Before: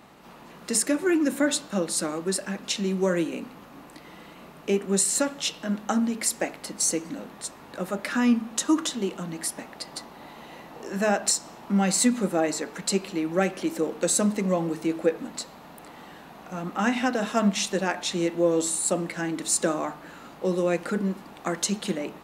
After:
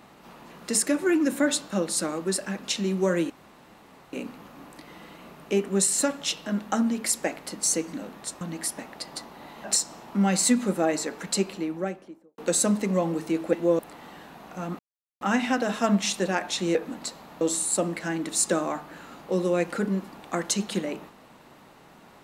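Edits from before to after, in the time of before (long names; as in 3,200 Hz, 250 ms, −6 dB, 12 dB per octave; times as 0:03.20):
0:03.30: splice in room tone 0.83 s
0:07.58–0:09.21: remove
0:10.44–0:11.19: remove
0:12.87–0:13.93: fade out and dull
0:15.08–0:15.74: swap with 0:18.28–0:18.54
0:16.74: splice in silence 0.42 s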